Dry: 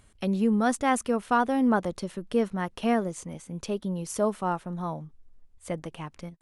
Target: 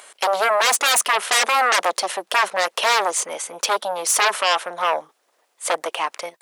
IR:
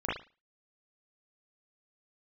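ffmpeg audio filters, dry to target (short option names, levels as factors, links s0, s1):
-af "aeval=exprs='0.282*sin(PI/2*7.94*val(0)/0.282)':c=same,highpass=f=520:w=0.5412,highpass=f=520:w=1.3066,volume=0.841"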